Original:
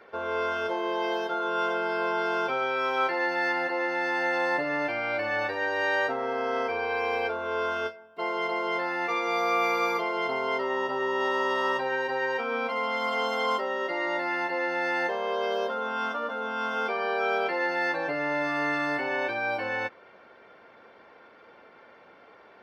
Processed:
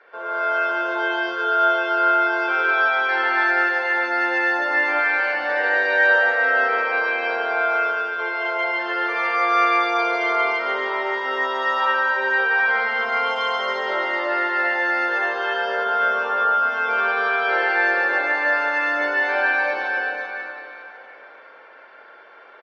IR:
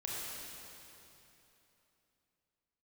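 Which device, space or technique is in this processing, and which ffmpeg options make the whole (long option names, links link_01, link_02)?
station announcement: -filter_complex "[0:a]highpass=490,lowpass=4800,equalizer=frequency=1600:width_type=o:width=0.31:gain=7.5,aecho=1:1:107.9|148.7:0.316|0.631[link_01];[1:a]atrim=start_sample=2205[link_02];[link_01][link_02]afir=irnorm=-1:irlink=0,volume=2.5dB"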